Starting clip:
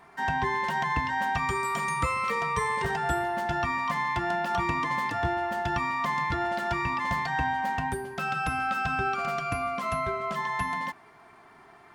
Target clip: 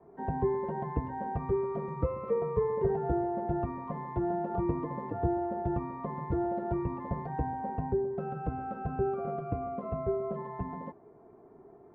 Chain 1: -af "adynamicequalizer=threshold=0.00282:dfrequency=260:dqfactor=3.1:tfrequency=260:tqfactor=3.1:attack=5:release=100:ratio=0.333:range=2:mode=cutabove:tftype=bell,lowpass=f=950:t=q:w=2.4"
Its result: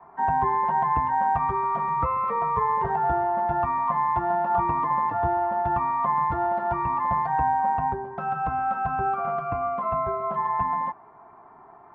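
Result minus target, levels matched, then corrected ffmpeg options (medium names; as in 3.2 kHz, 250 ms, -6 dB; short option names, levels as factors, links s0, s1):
500 Hz band -8.0 dB
-af "adynamicequalizer=threshold=0.00282:dfrequency=260:dqfactor=3.1:tfrequency=260:tqfactor=3.1:attack=5:release=100:ratio=0.333:range=2:mode=cutabove:tftype=bell,lowpass=f=450:t=q:w=2.4"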